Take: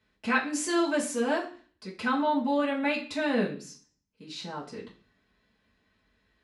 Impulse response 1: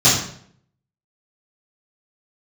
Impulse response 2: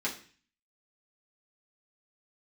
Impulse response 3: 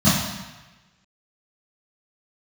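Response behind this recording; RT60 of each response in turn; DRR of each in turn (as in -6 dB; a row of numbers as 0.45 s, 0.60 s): 2; 0.60 s, 0.40 s, 1.1 s; -13.0 dB, -6.0 dB, -14.0 dB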